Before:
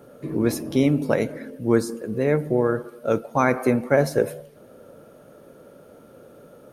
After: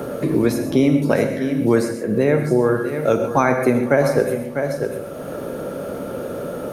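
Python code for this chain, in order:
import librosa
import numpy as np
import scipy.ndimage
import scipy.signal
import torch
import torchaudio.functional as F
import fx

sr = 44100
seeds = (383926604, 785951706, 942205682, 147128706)

y = x + 10.0 ** (-13.5 / 20.0) * np.pad(x, (int(647 * sr / 1000.0), 0))[:len(x)]
y = fx.rev_gated(y, sr, seeds[0], gate_ms=160, shape='flat', drr_db=5.5)
y = fx.band_squash(y, sr, depth_pct=70)
y = y * librosa.db_to_amplitude(3.0)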